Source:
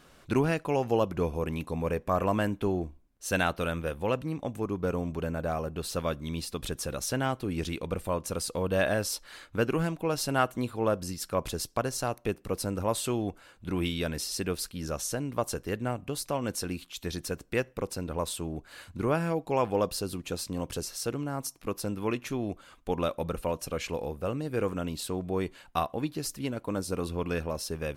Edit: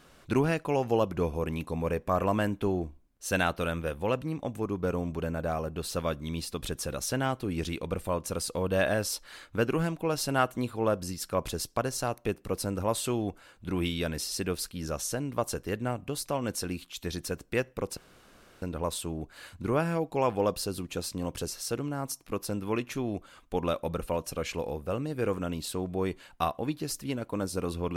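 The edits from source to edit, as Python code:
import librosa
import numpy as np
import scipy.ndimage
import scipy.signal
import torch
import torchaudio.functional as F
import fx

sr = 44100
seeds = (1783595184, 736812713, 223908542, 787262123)

y = fx.edit(x, sr, fx.insert_room_tone(at_s=17.97, length_s=0.65), tone=tone)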